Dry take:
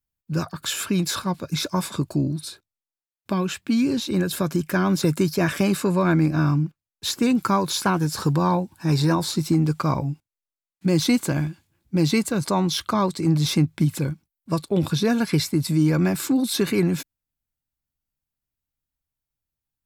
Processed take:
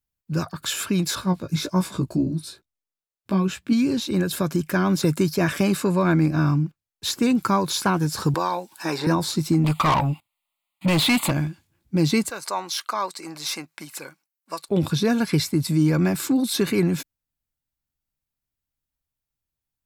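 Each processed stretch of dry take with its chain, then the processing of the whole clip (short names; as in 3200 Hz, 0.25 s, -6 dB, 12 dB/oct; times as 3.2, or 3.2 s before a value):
1.15–3.73 low shelf 480 Hz +5 dB + chorus 1.3 Hz, delay 15.5 ms, depth 2.4 ms
8.34–9.07 HPF 500 Hz + three-band squash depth 100%
9.64–11.31 fixed phaser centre 1600 Hz, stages 6 + overdrive pedal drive 26 dB, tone 5300 Hz, clips at -11.5 dBFS
12.3–14.69 HPF 730 Hz + bell 3400 Hz -7 dB 0.22 oct
whole clip: dry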